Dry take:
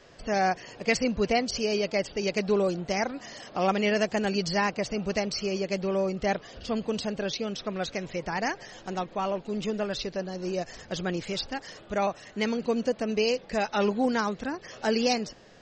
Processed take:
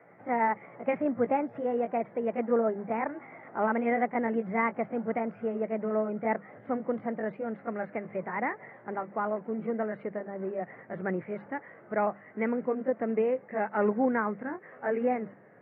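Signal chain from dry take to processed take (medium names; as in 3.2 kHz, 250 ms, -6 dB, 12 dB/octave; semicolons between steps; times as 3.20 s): pitch bend over the whole clip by +3 st ending unshifted; Chebyshev band-pass 110–2100 Hz, order 5; hum notches 50/100/150/200 Hz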